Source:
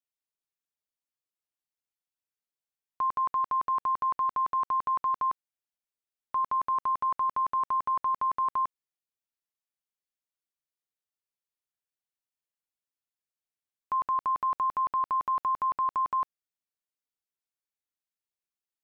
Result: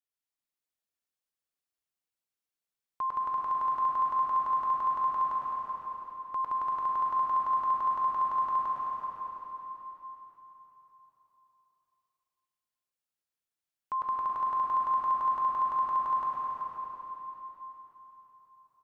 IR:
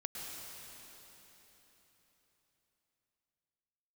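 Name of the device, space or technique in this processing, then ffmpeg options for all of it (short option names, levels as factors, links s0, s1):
cave: -filter_complex "[0:a]aecho=1:1:380:0.376[s0];[1:a]atrim=start_sample=2205[s1];[s0][s1]afir=irnorm=-1:irlink=0"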